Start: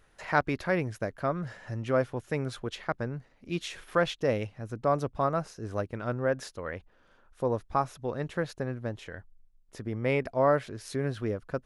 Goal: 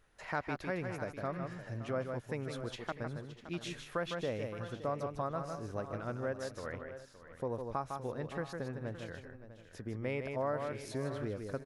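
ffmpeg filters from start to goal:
-filter_complex "[0:a]asplit=2[s0][s1];[s1]aecho=0:1:155|649:0.447|0.158[s2];[s0][s2]amix=inputs=2:normalize=0,acompressor=threshold=0.0355:ratio=2,asplit=2[s3][s4];[s4]aecho=0:1:568:0.2[s5];[s3][s5]amix=inputs=2:normalize=0,volume=0.501"

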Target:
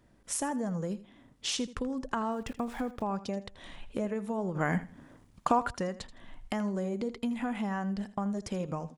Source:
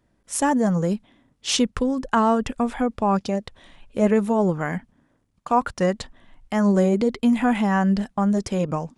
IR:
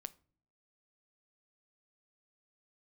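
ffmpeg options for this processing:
-filter_complex "[0:a]asettb=1/sr,asplit=3[s0][s1][s2];[s0]atrim=end=2.314[s3];[s1]atrim=start=2.31:end=3.02,asetpts=PTS-STARTPTS,afade=t=in:d=0.004:c=qsin,afade=t=out:st=0.706:d=0.004:c=qsin,aeval=exprs='val(0)*gte(abs(val(0)),0.01)':c=same[s4];[s2]atrim=start=3.016[s5];[s3][s4]acrossfade=d=0.004:c1=hsin:c2=qsin[s6];[s6][s5]acrossfade=d=0.004:c1=qsin:c2=hsin,acompressor=threshold=0.0158:ratio=4,asplit=2[s7][s8];[s8]aecho=0:1:81|162:0.158|0.0365[s9];[s7][s9]amix=inputs=2:normalize=0,asplit=3[s10][s11][s12];[s10]afade=t=out:st=4.54:d=0.02[s13];[s11]acontrast=84,afade=t=in:st=4.54:d=0.02,afade=t=out:st=5.73:d=0.02[s14];[s12]afade=t=in:st=5.73:d=0.02[s15];[s13][s14][s15]amix=inputs=3:normalize=0,volume=1.33"

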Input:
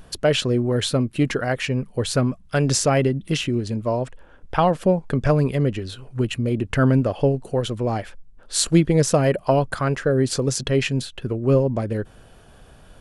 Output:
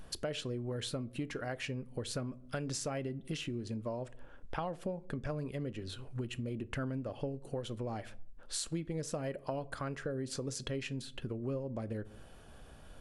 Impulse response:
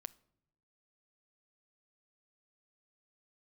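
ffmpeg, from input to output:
-filter_complex "[1:a]atrim=start_sample=2205,asetrate=83790,aresample=44100[s0];[0:a][s0]afir=irnorm=-1:irlink=0,acompressor=threshold=0.00891:ratio=4,volume=1.58"

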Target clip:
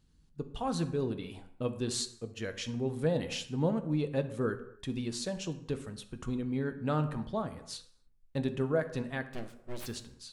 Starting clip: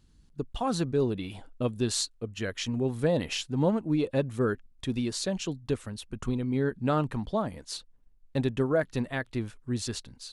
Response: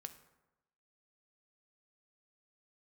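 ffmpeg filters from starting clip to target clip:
-filter_complex "[0:a]asplit=3[s0][s1][s2];[s0]afade=t=out:st=9.26:d=0.02[s3];[s1]aeval=exprs='abs(val(0))':c=same,afade=t=in:st=9.26:d=0.02,afade=t=out:st=9.85:d=0.02[s4];[s2]afade=t=in:st=9.85:d=0.02[s5];[s3][s4][s5]amix=inputs=3:normalize=0[s6];[1:a]atrim=start_sample=2205,afade=t=out:st=0.35:d=0.01,atrim=end_sample=15876[s7];[s6][s7]afir=irnorm=-1:irlink=0"

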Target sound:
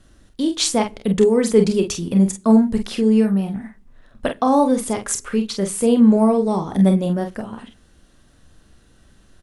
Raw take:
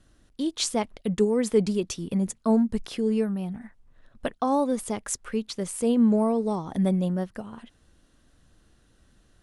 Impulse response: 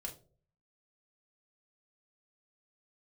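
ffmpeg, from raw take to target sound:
-filter_complex "[0:a]aecho=1:1:31|46:0.299|0.422,asplit=2[s0][s1];[1:a]atrim=start_sample=2205,asetrate=28665,aresample=44100[s2];[s1][s2]afir=irnorm=-1:irlink=0,volume=0.141[s3];[s0][s3]amix=inputs=2:normalize=0,volume=2"

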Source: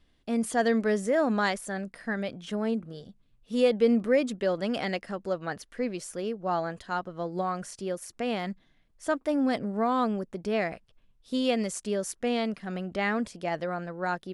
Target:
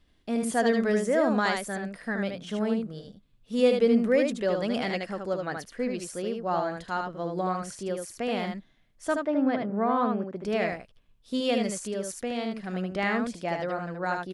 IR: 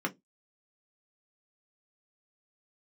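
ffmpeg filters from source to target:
-filter_complex "[0:a]asplit=3[s0][s1][s2];[s0]afade=t=out:st=9.18:d=0.02[s3];[s1]highpass=130,lowpass=2400,afade=t=in:st=9.18:d=0.02,afade=t=out:st=10.35:d=0.02[s4];[s2]afade=t=in:st=10.35:d=0.02[s5];[s3][s4][s5]amix=inputs=3:normalize=0,asettb=1/sr,asplit=3[s6][s7][s8];[s6]atrim=end=11.744[s9];[s7]atrim=start=11.74:end=12.56,asetpts=PTS-STARTPTS,afade=t=in:d=0.004:c=qsin,afade=t=out:st=0.816:d=0.004:c=qsin,acompressor=threshold=0.0178:ratio=1.5[s10];[s8]atrim=start=12.556[s11];[s9][s10]acrossfade=d=0.004:c1=hsin:c2=qsin[s12];[s12][s11]acrossfade=d=0.004:c1=qsin:c2=hsin,aecho=1:1:76:0.596"

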